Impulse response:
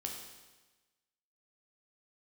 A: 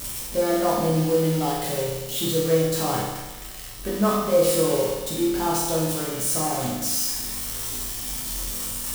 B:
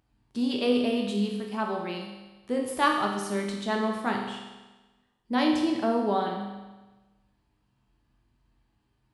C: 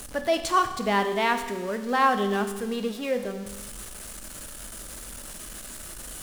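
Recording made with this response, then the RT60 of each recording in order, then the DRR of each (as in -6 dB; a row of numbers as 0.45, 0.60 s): B; 1.2, 1.2, 1.2 s; -5.5, 0.5, 7.5 dB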